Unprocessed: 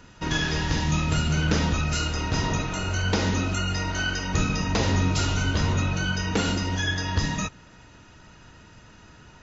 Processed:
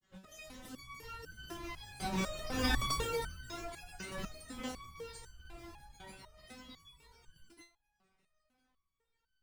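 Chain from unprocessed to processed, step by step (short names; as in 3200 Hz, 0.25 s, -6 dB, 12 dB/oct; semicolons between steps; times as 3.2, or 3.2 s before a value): Doppler pass-by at 2.77, 35 m/s, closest 6.9 m; dynamic EQ 390 Hz, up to +4 dB, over -50 dBFS, Q 2.2; short-mantissa float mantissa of 2-bit; grains, pitch spread up and down by 12 st; stepped resonator 4 Hz 190–1500 Hz; gain +15.5 dB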